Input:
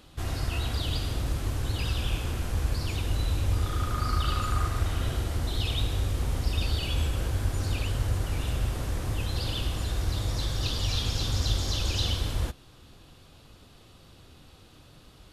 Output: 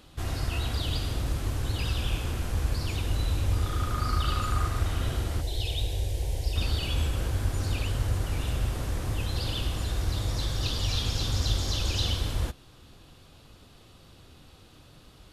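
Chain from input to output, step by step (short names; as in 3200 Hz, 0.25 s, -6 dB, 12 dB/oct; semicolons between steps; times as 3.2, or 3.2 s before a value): 5.41–6.56 fixed phaser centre 520 Hz, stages 4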